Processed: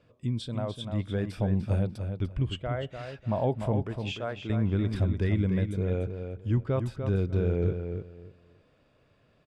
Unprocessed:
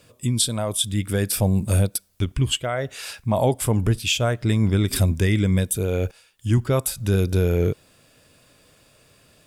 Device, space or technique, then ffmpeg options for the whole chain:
phone in a pocket: -filter_complex "[0:a]asettb=1/sr,asplit=3[link_01][link_02][link_03];[link_01]atrim=end=3.824[link_04];[link_02]atrim=start=3.82:end=4.5,asetpts=PTS-STARTPTS,afade=type=in:duration=0.004:curve=qsin,afade=type=out:start_time=0.676:duration=0.004:curve=qsin,highpass=frequency=470:poles=1[link_05];[link_03]atrim=start=4.496[link_06];[link_04][link_05]acrossfade=duration=0.004:curve1=hsin:curve2=qsin[link_07];[link_07][link_06]acrossfade=duration=0.004:curve1=qsin:curve2=hsin,lowpass=3800,highshelf=frequency=2100:gain=-9.5,asplit=2[link_08][link_09];[link_09]adelay=296,lowpass=frequency=4800:poles=1,volume=-7dB,asplit=2[link_10][link_11];[link_11]adelay=296,lowpass=frequency=4800:poles=1,volume=0.22,asplit=2[link_12][link_13];[link_13]adelay=296,lowpass=frequency=4800:poles=1,volume=0.22[link_14];[link_08][link_10][link_12][link_14]amix=inputs=4:normalize=0,volume=-7dB"

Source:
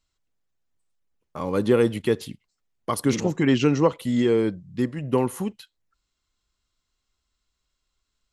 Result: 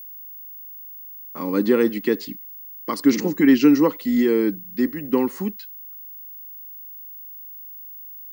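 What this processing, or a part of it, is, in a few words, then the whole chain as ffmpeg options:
old television with a line whistle: -af "highpass=frequency=190:width=0.5412,highpass=frequency=190:width=1.3066,equalizer=frequency=200:width_type=q:width=4:gain=4,equalizer=frequency=290:width_type=q:width=4:gain=9,equalizer=frequency=660:width_type=q:width=4:gain=-8,equalizer=frequency=1900:width_type=q:width=4:gain=6,equalizer=frequency=3300:width_type=q:width=4:gain=-5,equalizer=frequency=4700:width_type=q:width=4:gain=8,lowpass=frequency=7900:width=0.5412,lowpass=frequency=7900:width=1.3066,aeval=exprs='val(0)+0.0158*sin(2*PI*15625*n/s)':channel_layout=same"

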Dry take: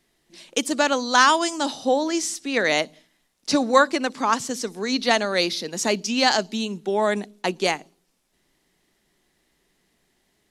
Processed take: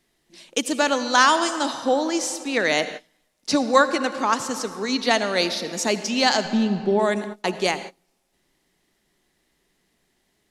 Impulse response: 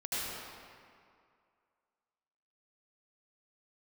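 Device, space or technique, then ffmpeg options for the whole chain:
keyed gated reverb: -filter_complex "[0:a]asplit=3[link_01][link_02][link_03];[link_01]afade=type=out:start_time=6.44:duration=0.02[link_04];[link_02]aemphasis=mode=reproduction:type=riaa,afade=type=in:start_time=6.44:duration=0.02,afade=type=out:start_time=6.98:duration=0.02[link_05];[link_03]afade=type=in:start_time=6.98:duration=0.02[link_06];[link_04][link_05][link_06]amix=inputs=3:normalize=0,asplit=3[link_07][link_08][link_09];[1:a]atrim=start_sample=2205[link_10];[link_08][link_10]afir=irnorm=-1:irlink=0[link_11];[link_09]apad=whole_len=463408[link_12];[link_11][link_12]sidechaingate=range=-33dB:threshold=-39dB:ratio=16:detection=peak,volume=-15.5dB[link_13];[link_07][link_13]amix=inputs=2:normalize=0,volume=-1dB"

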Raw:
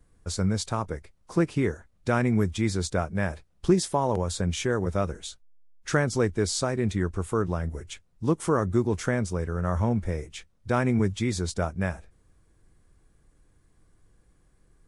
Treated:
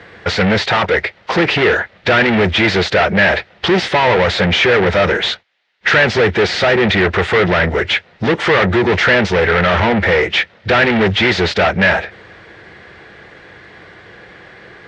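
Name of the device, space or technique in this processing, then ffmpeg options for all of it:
overdrive pedal into a guitar cabinet: -filter_complex "[0:a]asplit=2[link_01][link_02];[link_02]highpass=frequency=720:poles=1,volume=38dB,asoftclip=type=tanh:threshold=-9.5dB[link_03];[link_01][link_03]amix=inputs=2:normalize=0,lowpass=frequency=7200:poles=1,volume=-6dB,highpass=84,equalizer=frequency=150:width_type=q:width=4:gain=-5,equalizer=frequency=270:width_type=q:width=4:gain=-10,equalizer=frequency=1100:width_type=q:width=4:gain=-7,equalizer=frequency=1900:width_type=q:width=4:gain=6,lowpass=frequency=3800:width=0.5412,lowpass=frequency=3800:width=1.3066,volume=5.5dB"

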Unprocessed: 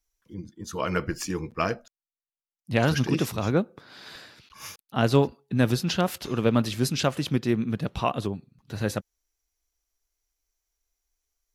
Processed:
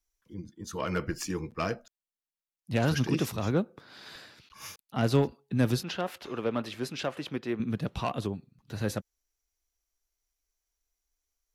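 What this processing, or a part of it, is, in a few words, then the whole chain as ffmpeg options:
one-band saturation: -filter_complex "[0:a]acrossover=split=370|4300[link_01][link_02][link_03];[link_02]asoftclip=type=tanh:threshold=-21dB[link_04];[link_01][link_04][link_03]amix=inputs=3:normalize=0,asettb=1/sr,asplit=3[link_05][link_06][link_07];[link_05]atrim=end=5.834[link_08];[link_06]atrim=start=5.83:end=7.6,asetpts=PTS-STARTPTS,afade=type=in:duration=0.004:curve=qsin,afade=type=out:start_time=1.766:duration=0.004:curve=qsin,bass=frequency=250:gain=-13,treble=frequency=4000:gain=-11[link_09];[link_07]atrim=start=7.596[link_10];[link_08][link_09]acrossfade=duration=0.004:curve1=hsin:curve2=qsin[link_11];[link_11][link_10]acrossfade=duration=0.004:curve1=qsin:curve2=hsin,volume=-3dB"

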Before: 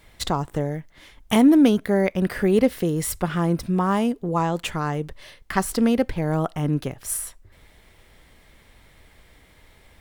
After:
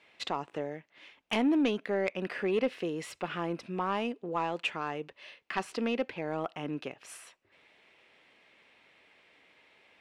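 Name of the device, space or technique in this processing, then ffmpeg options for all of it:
intercom: -af "highpass=310,lowpass=4500,equalizer=frequency=2600:width_type=o:width=0.34:gain=10,asoftclip=type=tanh:threshold=-12dB,volume=-7dB"

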